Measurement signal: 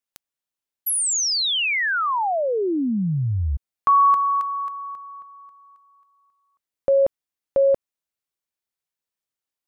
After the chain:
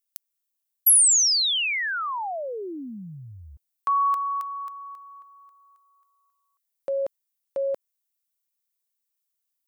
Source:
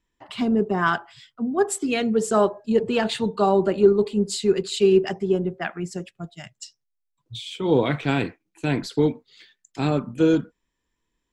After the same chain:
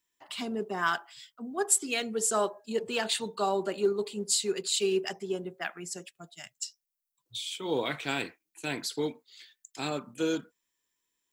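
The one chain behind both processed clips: RIAA curve recording; gain -7 dB

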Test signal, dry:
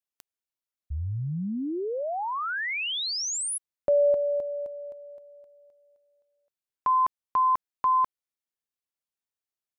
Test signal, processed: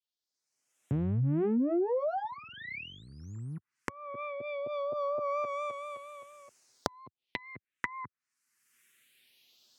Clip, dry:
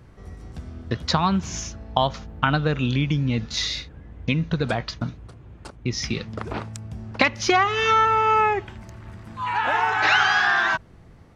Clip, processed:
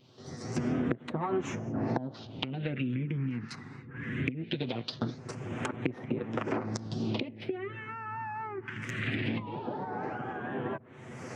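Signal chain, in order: minimum comb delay 8 ms; recorder AGC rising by 32 dB/s, up to +33 dB; weighting filter D; treble ducked by the level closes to 510 Hz, closed at -11 dBFS; HPF 98 Hz 24 dB/oct; dynamic EQ 300 Hz, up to +5 dB, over -32 dBFS, Q 1.4; compressor 10:1, threshold -20 dBFS; vibrato 4.3 Hz 46 cents; phaser stages 4, 0.21 Hz, lowest notch 570–4700 Hz; gain -7 dB

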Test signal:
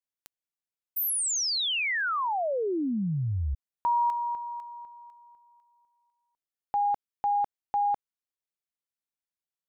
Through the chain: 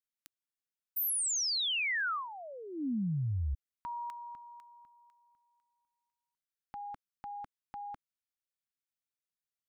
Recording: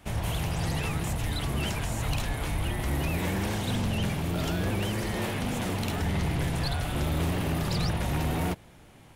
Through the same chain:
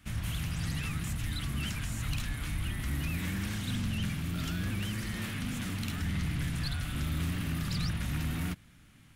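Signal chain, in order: band shelf 590 Hz -13 dB; gain -4 dB

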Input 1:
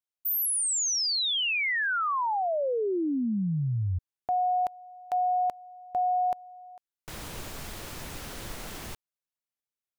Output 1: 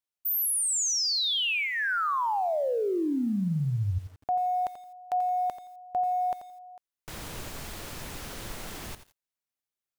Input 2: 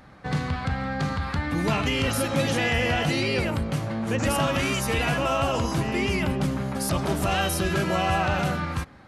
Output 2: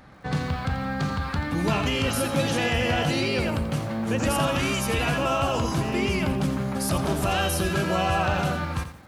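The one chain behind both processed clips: dynamic EQ 2000 Hz, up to -5 dB, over -47 dBFS, Q 6.8; lo-fi delay 86 ms, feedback 35%, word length 8-bit, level -11 dB

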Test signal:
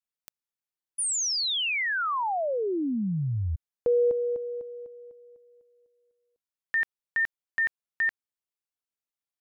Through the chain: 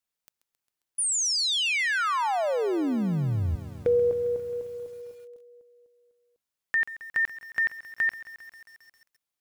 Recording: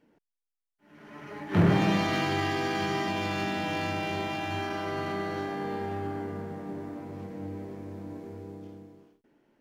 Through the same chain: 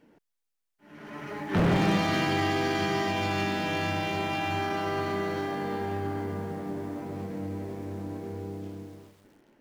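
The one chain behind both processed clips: in parallel at -1 dB: compressor 6:1, threshold -41 dBFS; on the sum: wavefolder -17.5 dBFS; lo-fi delay 0.134 s, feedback 80%, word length 8-bit, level -15 dB

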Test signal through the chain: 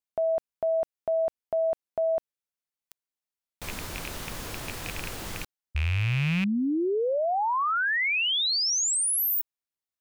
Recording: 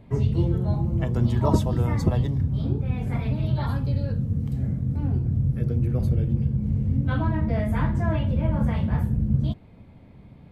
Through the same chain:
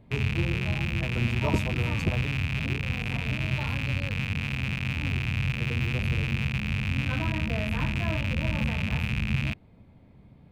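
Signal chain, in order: rattling part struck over -30 dBFS, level -15 dBFS; gain -5.5 dB

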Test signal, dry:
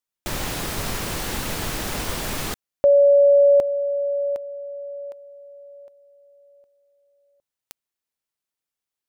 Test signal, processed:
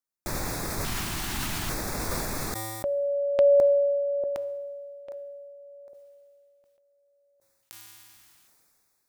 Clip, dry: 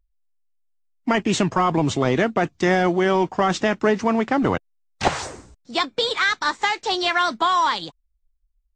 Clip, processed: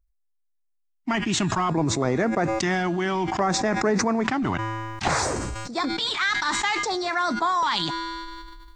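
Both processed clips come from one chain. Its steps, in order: LFO notch square 0.59 Hz 500–3000 Hz; resonator 110 Hz, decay 1.4 s, harmonics odd, mix 50%; sustainer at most 22 dB/s; gain +2 dB

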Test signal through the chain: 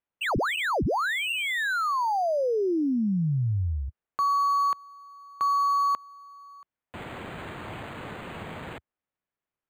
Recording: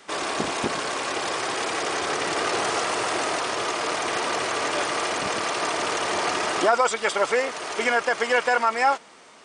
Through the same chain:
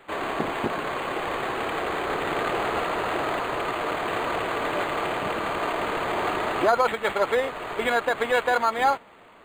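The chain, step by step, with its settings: HPF 78 Hz 24 dB/oct; decimation joined by straight lines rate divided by 8×

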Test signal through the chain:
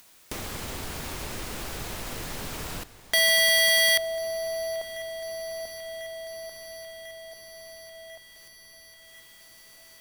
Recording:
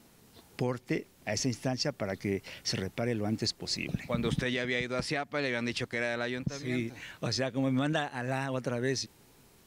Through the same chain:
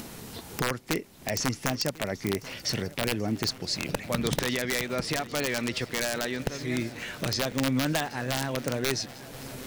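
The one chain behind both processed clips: upward compressor, threshold -31 dBFS; wrapped overs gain 20 dB; swung echo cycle 1.045 s, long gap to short 3:1, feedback 72%, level -19.5 dB; gain +2.5 dB

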